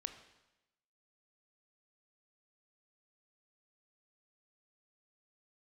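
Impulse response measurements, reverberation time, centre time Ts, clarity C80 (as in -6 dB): 0.95 s, 13 ms, 12.5 dB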